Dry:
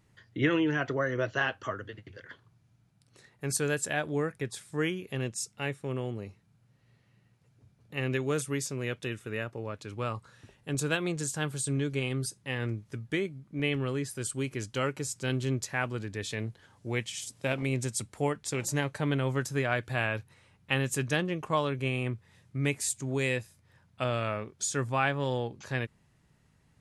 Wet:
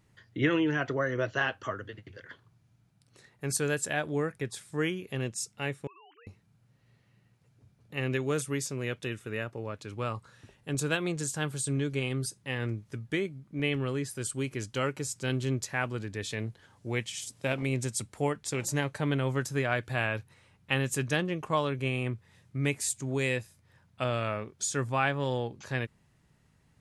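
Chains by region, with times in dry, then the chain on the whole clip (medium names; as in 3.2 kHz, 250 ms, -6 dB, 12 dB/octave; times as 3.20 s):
5.87–6.27 s: formants replaced by sine waves + high-pass 800 Hz 24 dB/octave + compression, threshold -52 dBFS
whole clip: none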